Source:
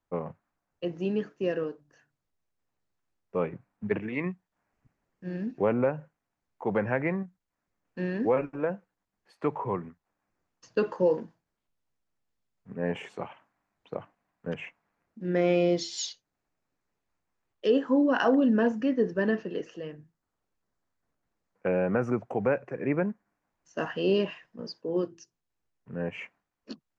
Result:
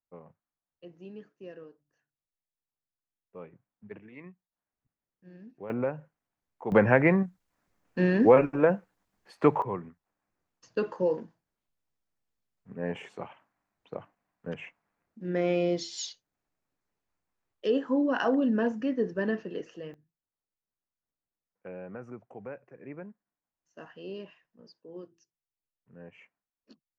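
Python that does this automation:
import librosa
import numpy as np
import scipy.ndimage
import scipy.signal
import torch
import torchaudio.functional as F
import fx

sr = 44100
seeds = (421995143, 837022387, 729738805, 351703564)

y = fx.gain(x, sr, db=fx.steps((0.0, -16.0), (5.7, -4.0), (6.72, 7.0), (9.62, -3.0), (19.94, -15.5)))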